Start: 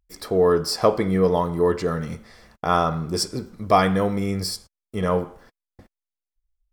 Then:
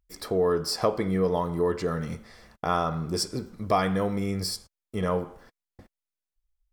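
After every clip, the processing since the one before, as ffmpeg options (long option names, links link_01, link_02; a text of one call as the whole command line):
ffmpeg -i in.wav -af "acompressor=threshold=-25dB:ratio=1.5,volume=-2dB" out.wav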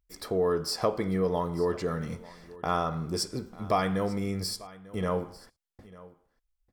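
ffmpeg -i in.wav -af "aecho=1:1:895:0.1,volume=-2.5dB" out.wav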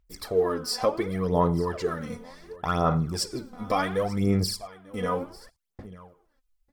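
ffmpeg -i in.wav -af "aphaser=in_gain=1:out_gain=1:delay=4.1:decay=0.67:speed=0.69:type=sinusoidal" out.wav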